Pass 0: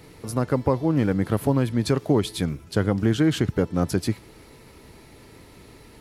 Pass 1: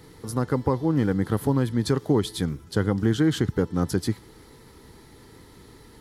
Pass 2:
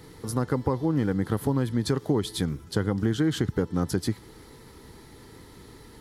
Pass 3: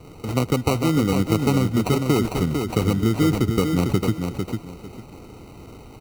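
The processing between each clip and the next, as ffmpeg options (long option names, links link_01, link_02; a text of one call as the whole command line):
ffmpeg -i in.wav -af "superequalizer=8b=0.501:12b=0.447,volume=-1dB" out.wav
ffmpeg -i in.wav -af "acompressor=threshold=-24dB:ratio=2,volume=1dB" out.wav
ffmpeg -i in.wav -filter_complex "[0:a]acrossover=split=280[link_01][link_02];[link_02]acrusher=samples=26:mix=1:aa=0.000001[link_03];[link_01][link_03]amix=inputs=2:normalize=0,aecho=1:1:450|900|1350:0.531|0.122|0.0281,volume=5dB" out.wav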